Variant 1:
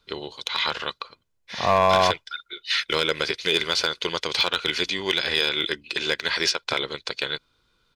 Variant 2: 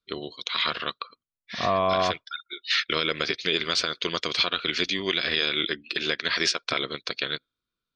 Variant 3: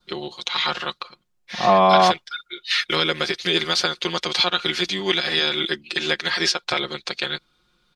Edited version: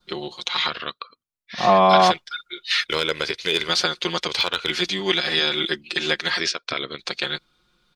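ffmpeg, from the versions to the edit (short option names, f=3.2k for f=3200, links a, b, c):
-filter_complex "[1:a]asplit=2[a][b];[0:a]asplit=2[c][d];[2:a]asplit=5[e][f][g][h][i];[e]atrim=end=0.682[j];[a]atrim=start=0.678:end=1.582[k];[f]atrim=start=1.578:end=2.872[l];[c]atrim=start=2.868:end=3.692[m];[g]atrim=start=3.688:end=4.282[n];[d]atrim=start=4.278:end=4.702[o];[h]atrim=start=4.698:end=6.402[p];[b]atrim=start=6.398:end=6.992[q];[i]atrim=start=6.988[r];[j][k]acrossfade=d=0.004:c1=hsin:c2=hsin[s];[s][l]acrossfade=d=0.004:c1=hsin:c2=hsin[t];[t][m]acrossfade=d=0.004:c1=hsin:c2=hsin[u];[u][n]acrossfade=d=0.004:c1=hsin:c2=hsin[v];[v][o]acrossfade=d=0.004:c1=hsin:c2=hsin[w];[w][p]acrossfade=d=0.004:c1=hsin:c2=hsin[x];[x][q]acrossfade=d=0.004:c1=hsin:c2=hsin[y];[y][r]acrossfade=d=0.004:c1=hsin:c2=hsin"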